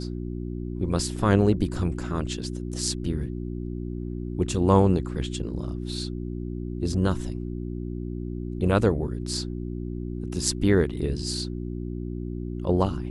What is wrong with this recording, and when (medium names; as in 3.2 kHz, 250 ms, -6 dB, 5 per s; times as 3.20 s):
hum 60 Hz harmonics 6 -32 dBFS